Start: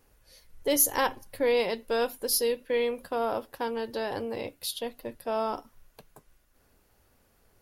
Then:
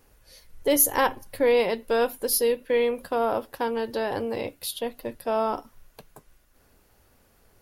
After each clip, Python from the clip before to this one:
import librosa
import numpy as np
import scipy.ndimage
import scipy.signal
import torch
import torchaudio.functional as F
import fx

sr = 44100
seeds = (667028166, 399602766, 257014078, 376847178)

y = fx.dynamic_eq(x, sr, hz=5300.0, q=0.88, threshold_db=-47.0, ratio=4.0, max_db=-6)
y = y * librosa.db_to_amplitude(4.5)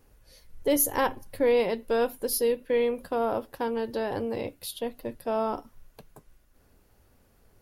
y = fx.low_shelf(x, sr, hz=480.0, db=6.0)
y = y * librosa.db_to_amplitude(-5.0)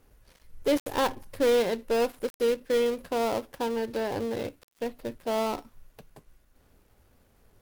y = fx.dead_time(x, sr, dead_ms=0.16)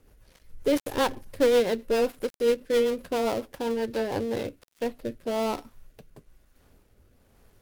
y = fx.rotary_switch(x, sr, hz=7.5, then_hz=1.1, switch_at_s=3.8)
y = y * librosa.db_to_amplitude(3.5)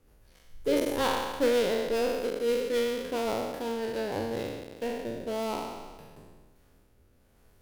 y = fx.spec_trails(x, sr, decay_s=1.42)
y = y * librosa.db_to_amplitude(-5.5)